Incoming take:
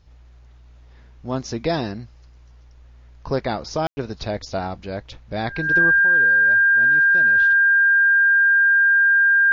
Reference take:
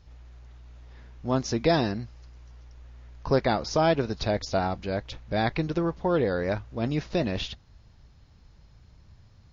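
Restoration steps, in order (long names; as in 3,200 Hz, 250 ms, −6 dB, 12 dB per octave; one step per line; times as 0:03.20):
notch filter 1,600 Hz, Q 30
ambience match 0:03.87–0:03.97
level correction +12 dB, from 0:05.99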